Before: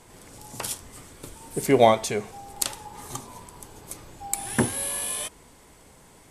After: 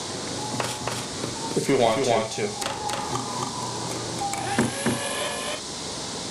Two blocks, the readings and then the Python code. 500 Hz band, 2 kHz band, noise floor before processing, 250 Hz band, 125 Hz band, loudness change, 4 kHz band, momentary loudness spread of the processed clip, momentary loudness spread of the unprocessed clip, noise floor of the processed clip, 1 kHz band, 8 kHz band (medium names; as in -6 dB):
0.0 dB, +4.5 dB, -53 dBFS, +2.5 dB, +3.0 dB, -1.0 dB, +7.5 dB, 9 LU, 24 LU, -33 dBFS, +2.0 dB, +0.5 dB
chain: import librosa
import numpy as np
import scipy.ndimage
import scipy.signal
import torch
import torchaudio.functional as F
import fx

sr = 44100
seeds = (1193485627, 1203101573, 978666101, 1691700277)

p1 = scipy.signal.sosfilt(scipy.signal.butter(2, 110.0, 'highpass', fs=sr, output='sos'), x)
p2 = fx.high_shelf(p1, sr, hz=5900.0, db=-4.5)
p3 = 10.0 ** (-20.5 / 20.0) * (np.abs((p2 / 10.0 ** (-20.5 / 20.0) + 3.0) % 4.0 - 2.0) - 1.0)
p4 = p2 + (p3 * librosa.db_to_amplitude(-7.0))
p5 = fx.dmg_noise_band(p4, sr, seeds[0], low_hz=3600.0, high_hz=9700.0, level_db=-40.0)
p6 = fx.air_absorb(p5, sr, metres=58.0)
p7 = fx.doubler(p6, sr, ms=42.0, db=-7.0)
p8 = p7 + fx.echo_single(p7, sr, ms=274, db=-3.5, dry=0)
p9 = fx.band_squash(p8, sr, depth_pct=70)
y = p9 * librosa.db_to_amplitude(2.0)